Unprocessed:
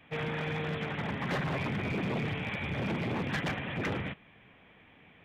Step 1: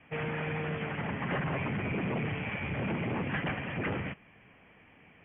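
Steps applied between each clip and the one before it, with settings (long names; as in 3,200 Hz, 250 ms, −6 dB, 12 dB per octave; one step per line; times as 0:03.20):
Butterworth low-pass 3,100 Hz 96 dB per octave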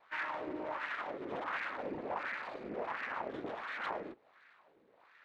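phaser with its sweep stopped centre 850 Hz, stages 6
full-wave rectification
auto-filter band-pass sine 1.4 Hz 350–1,700 Hz
level +10 dB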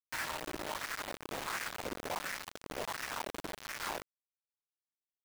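bit-depth reduction 6 bits, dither none
level −1 dB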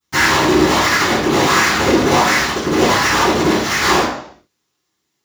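convolution reverb RT60 0.60 s, pre-delay 3 ms, DRR −22.5 dB
in parallel at −4.5 dB: gain into a clipping stage and back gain 25.5 dB
on the sum: level +4 dB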